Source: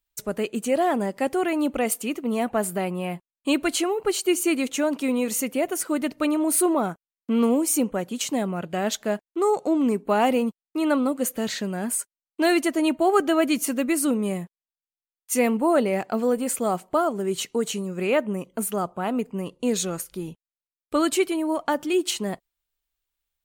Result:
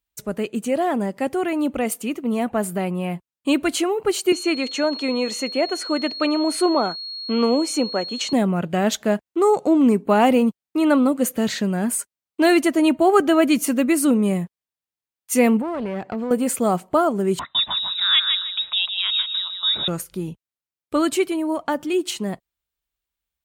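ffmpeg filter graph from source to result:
-filter_complex "[0:a]asettb=1/sr,asplit=3[a][b][c];[a]atrim=end=4.324[d];[b]atrim=start=4.32:end=8.33,asetpts=PTS-STARTPTS,afade=t=in:d=0.004:c=qsin,afade=t=out:st=4.006:d=0.004:c=qsin,highpass=350,lowpass=5.7k,aeval=exprs='val(0)+0.0224*sin(2*PI*4300*n/s)':c=same[e];[c]atrim=start=8.326[f];[d][e]acrossfade=d=0.004:c1=hsin:c2=qsin[g];[g][f]acrossfade=d=0.004:c1=qsin:c2=hsin,asettb=1/sr,asplit=3[h][i][j];[h]atrim=end=15.614[k];[i]atrim=start=15.61:end=16.31,asetpts=PTS-STARTPTS,afade=t=in:d=0.004:c=qsin,afade=t=out:st=0.696:d=0.004:c=qsin,aeval=exprs='clip(val(0),-1,0.0447)':c=same,equalizer=f=12k:t=o:w=1.5:g=-15,acompressor=threshold=-30dB:ratio=2.5:attack=3.2:release=140:knee=1:detection=peak[l];[j]atrim=start=16.306[m];[k][l]acrossfade=d=0.004:c1=hsin:c2=qsin[n];[n][m]acrossfade=d=0.004:c1=qsin:c2=hsin,asettb=1/sr,asplit=3[o][p][q];[o]atrim=end=17.394[r];[p]atrim=start=17.39:end=19.88,asetpts=PTS-STARTPTS,afade=t=in:d=0.004:c=qsin,afade=t=out:st=2.486:d=0.004:c=qsin,lowpass=f=3.4k:t=q:w=0.5098,lowpass=f=3.4k:t=q:w=0.6013,lowpass=f=3.4k:t=q:w=0.9,lowpass=f=3.4k:t=q:w=2.563,afreqshift=-4000,aecho=1:1:156|312|468:0.501|0.13|0.0339,atrim=end_sample=109809[s];[q]atrim=start=19.876[t];[r][s]acrossfade=d=0.004:c1=hsin:c2=qsin[u];[u][t]acrossfade=d=0.004:c1=qsin:c2=hsin,dynaudnorm=f=940:g=9:m=5dB,highpass=48,bass=f=250:g=5,treble=f=4k:g=-2"

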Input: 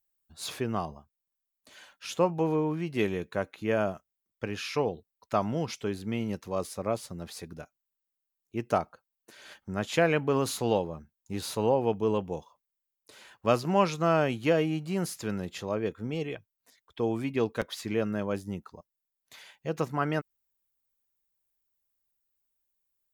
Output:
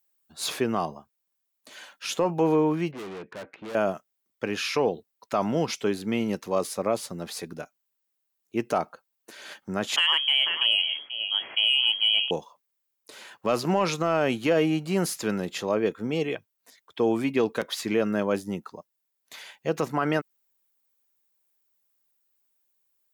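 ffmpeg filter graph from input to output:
-filter_complex "[0:a]asettb=1/sr,asplit=3[a][b][c];[a]atrim=end=2.914[d];[b]atrim=start=2.91:end=3.75,asetpts=PTS-STARTPTS,afade=t=in:d=0.004:c=qsin,afade=t=out:st=0.836:d=0.004:c=qsin,lowpass=f=2.5k:w=0.5412,lowpass=f=2.5k:w=1.3066,aeval=exprs='(tanh(126*val(0)+0.45)-tanh(0.45))/126':c=same[e];[c]atrim=start=3.746[f];[d][e]acrossfade=d=0.004:c1=hsin:c2=qsin[g];[g][f]acrossfade=d=0.004:c1=qsin:c2=hsin,asettb=1/sr,asplit=3[h][i][j];[h]atrim=end=9.964[k];[i]atrim=start=9.96:end=12.31,asetpts=PTS-STARTPTS,afade=t=in:d=0.004:c=qsin,afade=t=out:st=2.346:d=0.004:c=qsin,aecho=1:1:488:0.224,atrim=end_sample=103635,lowpass=f=2.9k:t=q:w=0.5098,lowpass=f=2.9k:t=q:w=0.6013,lowpass=f=2.9k:t=q:w=0.9,lowpass=f=2.9k:t=q:w=2.563,afreqshift=-3400[l];[j]atrim=start=12.306[m];[k][l]acrossfade=d=0.004:c1=hsin:c2=qsin[n];[n][m]acrossfade=d=0.004:c1=qsin:c2=hsin,highpass=190,acontrast=78,alimiter=limit=-13.5dB:level=0:latency=1:release=44"

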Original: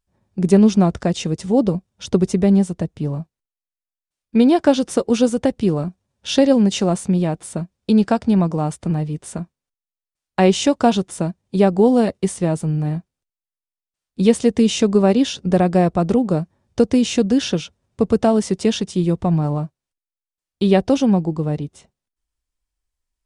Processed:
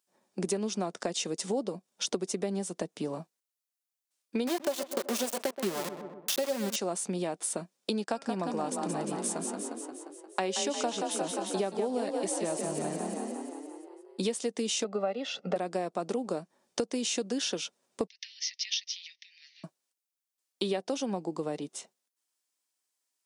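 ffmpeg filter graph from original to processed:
-filter_complex "[0:a]asettb=1/sr,asplit=3[a][b][c];[a]atrim=end=4.474[d];[b]atrim=start=4.47:end=6.76,asetpts=PTS-STARTPTS,afade=t=in:d=0.004:c=qsin,afade=t=out:st=2.286:d=0.004:c=qsin,aecho=1:1:5.2:0.61,atrim=end_sample=100989,aeval=exprs='val(0)*gte(abs(val(0)),0.112)':c=same,asplit=2[e][f];[f]adelay=126,lowpass=f=1.4k:p=1,volume=-12.5dB,asplit=2[g][h];[h]adelay=126,lowpass=f=1.4k:p=1,volume=0.5,asplit=2[i][j];[j]adelay=126,lowpass=f=1.4k:p=1,volume=0.5,asplit=2[k][l];[l]adelay=126,lowpass=f=1.4k:p=1,volume=0.5,asplit=2[m][n];[n]adelay=126,lowpass=f=1.4k:p=1,volume=0.5[o];[e][g][i][k][m][o]amix=inputs=6:normalize=0,atrim=end_sample=100989[p];[c]atrim=start=6.756[q];[d][p]acrossfade=d=0.004:c1=hsin:c2=qsin[r];[r][q]acrossfade=d=0.004:c1=qsin:c2=hsin,asettb=1/sr,asplit=3[s][t][u];[s]atrim=end=8.044[v];[t]atrim=start=8.04:end=14.24,asetpts=PTS-STARTPTS,afade=t=in:d=0.004:c=qsin,afade=t=out:st=6.196:d=0.004:c=qsin,bandreject=f=273.9:t=h:w=4,bandreject=f=547.8:t=h:w=4,bandreject=f=821.7:t=h:w=4,bandreject=f=1.0956k:t=h:w=4,bandreject=f=1.3695k:t=h:w=4,bandreject=f=1.6434k:t=h:w=4,bandreject=f=1.9173k:t=h:w=4,bandreject=f=2.1912k:t=h:w=4,bandreject=f=2.4651k:t=h:w=4,bandreject=f=2.739k:t=h:w=4,agate=range=-21dB:threshold=-45dB:ratio=16:release=100:detection=peak,asplit=9[w][x][y][z][aa][ab][ac][ad][ae];[x]adelay=176,afreqshift=31,volume=-7dB[af];[y]adelay=352,afreqshift=62,volume=-11.3dB[ag];[z]adelay=528,afreqshift=93,volume=-15.6dB[ah];[aa]adelay=704,afreqshift=124,volume=-19.9dB[ai];[ab]adelay=880,afreqshift=155,volume=-24.2dB[aj];[ac]adelay=1056,afreqshift=186,volume=-28.5dB[ak];[ad]adelay=1232,afreqshift=217,volume=-32.8dB[al];[ae]adelay=1408,afreqshift=248,volume=-37.1dB[am];[w][af][ag][ah][ai][aj][ak][al][am]amix=inputs=9:normalize=0,atrim=end_sample=273420[an];[u]atrim=start=14.236[ao];[v][an]acrossfade=d=0.004:c1=hsin:c2=qsin[ap];[ap][ao]acrossfade=d=0.004:c1=qsin:c2=hsin,asettb=1/sr,asplit=3[aq][ar][as];[aq]atrim=end=14.844[at];[ar]atrim=start=14.84:end=15.56,asetpts=PTS-STARTPTS,afade=t=in:d=0.004:c=qsin,afade=t=out:st=0.716:d=0.004:c=qsin,highpass=200,lowpass=2.5k,aecho=1:1:1.5:0.8,atrim=end_sample=31752[au];[as]atrim=start=15.556[av];[at][au]acrossfade=d=0.004:c1=hsin:c2=qsin[aw];[aw][av]acrossfade=d=0.004:c1=qsin:c2=hsin,asettb=1/sr,asplit=3[ax][ay][az];[ax]atrim=end=18.074[ba];[ay]atrim=start=18.07:end=19.64,asetpts=PTS-STARTPTS,afade=t=in:d=0.004:c=qsin,afade=t=out:st=1.566:d=0.004:c=qsin,acompressor=threshold=-19dB:ratio=12:attack=3.2:release=140:knee=1:detection=peak,asuperpass=centerf=3400:order=20:qfactor=0.8[bb];[az]atrim=start=19.636[bc];[ba][bb]acrossfade=d=0.004:c1=hsin:c2=qsin[bd];[bd][bc]acrossfade=d=0.004:c1=qsin:c2=hsin,highpass=f=180:w=0.5412,highpass=f=180:w=1.3066,bass=f=250:g=-13,treble=f=4k:g=7,acompressor=threshold=-29dB:ratio=6"

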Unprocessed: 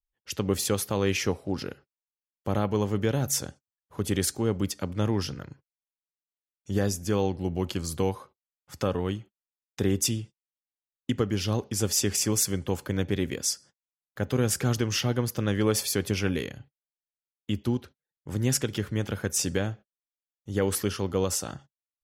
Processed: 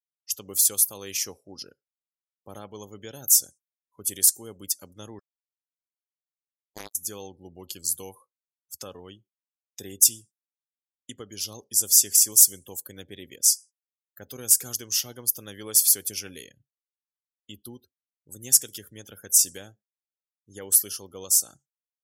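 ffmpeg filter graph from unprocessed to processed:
-filter_complex "[0:a]asettb=1/sr,asplit=3[a][b][c];[a]atrim=end=5.194[d];[b]atrim=start=5.19:end=6.95,asetpts=PTS-STARTPTS,afade=t=in:d=0.004:c=qsin,afade=t=out:st=1.756:d=0.004:c=qsin,aecho=1:1:6:0.47,atrim=end_sample=77616,acrusher=bits=2:mix=0:aa=0.5[e];[c]atrim=start=6.946[f];[d][e]acrossfade=d=0.004:c1=hsin:c2=qsin[g];[g][f]acrossfade=d=0.004:c1=qsin:c2=hsin,aemphasis=mode=production:type=75kf,afftdn=nr=34:nf=-38,bass=f=250:g=-7,treble=f=4k:g=13,volume=-13.5dB"

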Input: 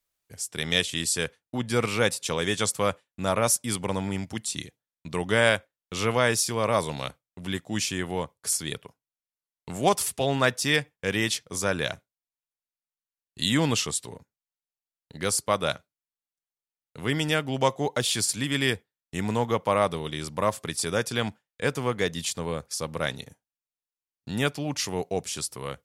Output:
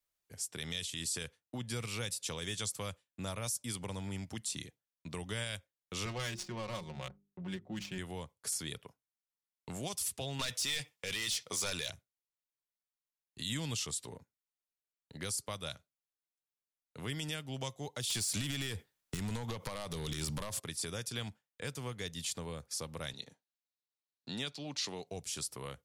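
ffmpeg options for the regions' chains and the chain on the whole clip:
-filter_complex "[0:a]asettb=1/sr,asplit=3[a][b][c];[a]atrim=end=6.054[d];[b]atrim=start=6.05:end=7.98,asetpts=PTS-STARTPTS,afade=t=in:d=0.004:c=qsin,afade=t=out:st=1.926:d=0.004:c=qsin,bandreject=f=50:t=h:w=6,bandreject=f=100:t=h:w=6,bandreject=f=150:t=h:w=6,bandreject=f=200:t=h:w=6,bandreject=f=250:t=h:w=6,bandreject=f=300:t=h:w=6,bandreject=f=350:t=h:w=6,bandreject=f=400:t=h:w=6,adynamicsmooth=sensitivity=2:basefreq=1.1k,aecho=1:1:5.5:0.75,atrim=end_sample=85113[e];[c]atrim=start=7.976[f];[d][e]acrossfade=d=0.004:c1=hsin:c2=qsin[g];[g][f]acrossfade=d=0.004:c1=qsin:c2=hsin,asettb=1/sr,asplit=3[h][i][j];[h]atrim=end=10.394[k];[i]atrim=start=10.39:end=11.9,asetpts=PTS-STARTPTS,afade=t=in:d=0.004:c=qsin,afade=t=out:st=1.506:d=0.004:c=qsin,bandreject=f=1.6k:w=7,asplit=2[l][m];[m]highpass=f=720:p=1,volume=22dB,asoftclip=type=tanh:threshold=-7dB[n];[l][n]amix=inputs=2:normalize=0,lowpass=f=6.3k:p=1,volume=-6dB[o];[j]atrim=start=11.896[p];[k][o]acrossfade=d=0.004:c1=hsin:c2=qsin[q];[q][p]acrossfade=d=0.004:c1=qsin:c2=hsin,asettb=1/sr,asplit=3[r][s][t];[r]atrim=end=18.104[u];[s]atrim=start=18.1:end=20.6,asetpts=PTS-STARTPTS,afade=t=in:d=0.004:c=qsin,afade=t=out:st=2.496:d=0.004:c=qsin,acompressor=threshold=-32dB:ratio=16:attack=3.2:release=140:knee=1:detection=peak,aeval=exprs='0.112*sin(PI/2*3.55*val(0)/0.112)':c=same[v];[t]atrim=start=20.596[w];[u][v]acrossfade=d=0.004:c1=hsin:c2=qsin[x];[x][w]acrossfade=d=0.004:c1=qsin:c2=hsin,asettb=1/sr,asplit=3[y][z][aa];[y]atrim=end=23.134[ab];[z]atrim=start=23.13:end=25.07,asetpts=PTS-STARTPTS,afade=t=in:d=0.004:c=qsin,afade=t=out:st=1.936:d=0.004:c=qsin,highpass=180,lowpass=7k,equalizer=f=4k:w=3.2:g=9.5[ac];[aa]atrim=start=25.066[ad];[ab][ac]acrossfade=d=0.004:c1=hsin:c2=qsin[ae];[ae][ad]acrossfade=d=0.004:c1=qsin:c2=hsin,acrossover=split=130|3000[af][ag][ah];[ag]acompressor=threshold=-35dB:ratio=6[ai];[af][ai][ah]amix=inputs=3:normalize=0,alimiter=limit=-20dB:level=0:latency=1:release=19,volume=-6dB"

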